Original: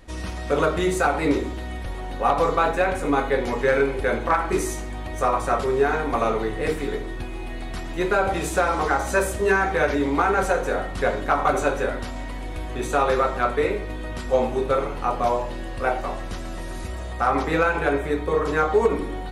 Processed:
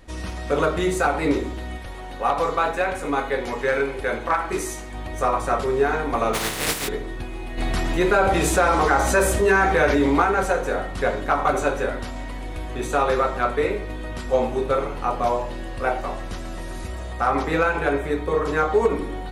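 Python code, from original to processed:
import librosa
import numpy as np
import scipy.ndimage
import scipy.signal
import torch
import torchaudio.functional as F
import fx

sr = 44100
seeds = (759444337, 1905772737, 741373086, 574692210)

y = fx.low_shelf(x, sr, hz=450.0, db=-5.5, at=(1.77, 4.94))
y = fx.spec_flatten(y, sr, power=0.31, at=(6.33, 6.87), fade=0.02)
y = fx.env_flatten(y, sr, amount_pct=50, at=(7.57, 10.23), fade=0.02)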